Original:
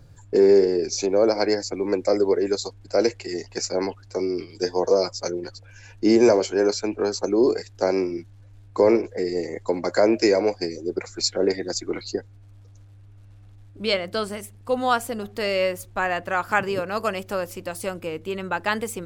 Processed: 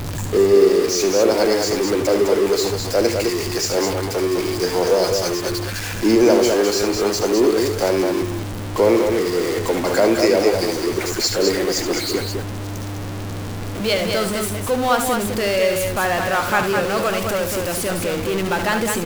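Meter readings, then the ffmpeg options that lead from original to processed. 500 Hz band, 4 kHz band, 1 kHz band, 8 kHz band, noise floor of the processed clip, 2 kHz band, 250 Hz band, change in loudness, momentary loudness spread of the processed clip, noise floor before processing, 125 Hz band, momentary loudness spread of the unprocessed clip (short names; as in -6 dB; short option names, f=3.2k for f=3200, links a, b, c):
+4.0 dB, +7.0 dB, +5.0 dB, +9.0 dB, -27 dBFS, +6.0 dB, +4.5 dB, +4.5 dB, 9 LU, -48 dBFS, +11.0 dB, 12 LU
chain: -af "aeval=exprs='val(0)+0.5*0.0841*sgn(val(0))':c=same,aecho=1:1:72.89|207:0.355|0.562"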